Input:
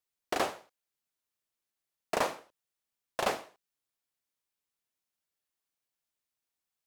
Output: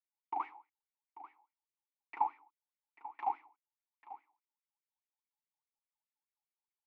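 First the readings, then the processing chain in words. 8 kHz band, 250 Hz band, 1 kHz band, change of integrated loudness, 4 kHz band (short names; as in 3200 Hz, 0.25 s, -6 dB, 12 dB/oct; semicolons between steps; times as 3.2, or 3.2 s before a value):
under -30 dB, -18.0 dB, -1.0 dB, -5.5 dB, under -30 dB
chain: vowel filter u; wah 4.8 Hz 780–1900 Hz, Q 11; echo 0.84 s -15 dB; gain +18 dB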